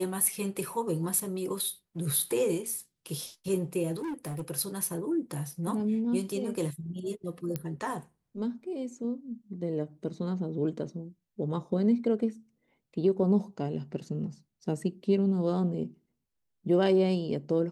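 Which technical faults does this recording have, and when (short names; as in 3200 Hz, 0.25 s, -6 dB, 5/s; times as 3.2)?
3.96–4.43 clipped -32 dBFS
7.56 pop -18 dBFS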